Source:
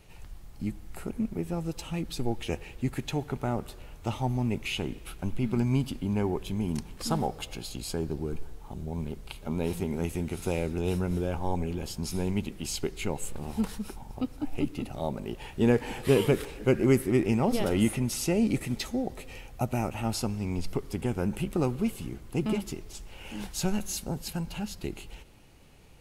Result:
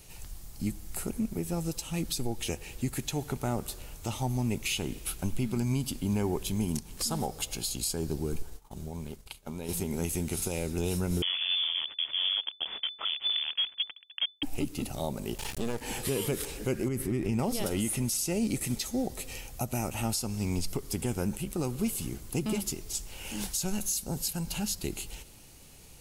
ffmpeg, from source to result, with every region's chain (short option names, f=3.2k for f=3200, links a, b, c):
-filter_complex "[0:a]asettb=1/sr,asplit=3[a][b][c];[a]atrim=end=8.424[d];[b]atrim=start=8.42:end=9.69,asetpts=PTS-STARTPTS,afade=t=in:d=0.004:c=qsin,afade=t=out:st=1.266:d=0.004:c=qsin,agate=range=-33dB:threshold=-34dB:ratio=3:release=100:detection=peak,equalizer=f=1.4k:w=0.32:g=4,acompressor=threshold=-35dB:ratio=5:attack=3.2:release=140:knee=1:detection=peak[e];[c]atrim=start=9.686[f];[d][e]acrossfade=d=0.004:c1=hsin:c2=qsin[g];[g][f]acrossfade=d=0.004:c1=qsin:c2=hsin,asettb=1/sr,asplit=3[h][i][j];[h]atrim=end=11.224[k];[i]atrim=start=11.22:end=14.43,asetpts=PTS-STARTPTS,afade=t=in:d=0.004:c=qsin,afade=t=out:st=3.206:d=0.004:c=qsin,acrusher=bits=4:mix=0:aa=0.5,lowpass=f=3k:t=q:w=0.5098,lowpass=f=3k:t=q:w=0.6013,lowpass=f=3k:t=q:w=0.9,lowpass=f=3k:t=q:w=2.563,afreqshift=-3500[l];[j]atrim=start=14.426[m];[k][l]acrossfade=d=0.004:c1=hsin:c2=qsin[n];[n][m]acrossfade=d=0.004:c1=qsin:c2=hsin,asettb=1/sr,asplit=3[o][p][q];[o]atrim=end=15.384[r];[p]atrim=start=15.38:end=15.81,asetpts=PTS-STARTPTS,afade=t=in:d=0.004:c=qsin,afade=t=out:st=0.426:d=0.004:c=qsin,acompressor=mode=upward:threshold=-26dB:ratio=2.5:attack=3.2:release=140:knee=2.83:detection=peak,aeval=exprs='max(val(0),0)':c=same[s];[q]atrim=start=15.806[t];[r][s]acrossfade=d=0.004:c1=hsin:c2=qsin[u];[u][t]acrossfade=d=0.004:c1=qsin:c2=hsin,asettb=1/sr,asplit=3[v][w][x];[v]atrim=end=16.884[y];[w]atrim=start=16.88:end=17.39,asetpts=PTS-STARTPTS,afade=t=in:d=0.004:c=qsin,afade=t=out:st=0.506:d=0.004:c=qsin,bass=f=250:g=5,treble=f=4k:g=-8,acompressor=threshold=-23dB:ratio=5:attack=3.2:release=140:knee=1:detection=peak[z];[x]atrim=start=17.386[aa];[y][z]acrossfade=d=0.004:c1=hsin:c2=qsin[ab];[ab][aa]acrossfade=d=0.004:c1=qsin:c2=hsin,bass=f=250:g=1,treble=f=4k:g=14,alimiter=limit=-20.5dB:level=0:latency=1:release=211"